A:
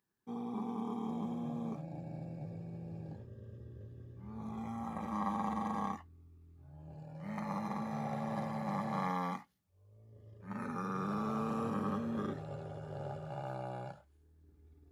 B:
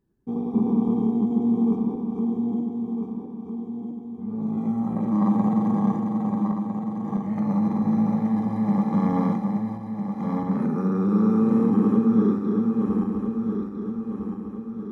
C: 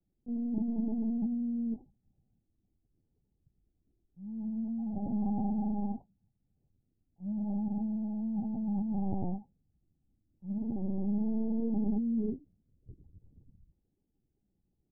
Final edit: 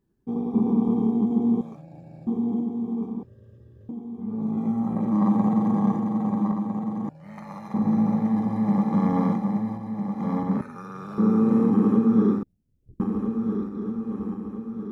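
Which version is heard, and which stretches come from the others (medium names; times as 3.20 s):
B
1.61–2.27 s: from A
3.23–3.89 s: from A
7.09–7.74 s: from A
10.61–11.18 s: from A
12.43–13.00 s: from C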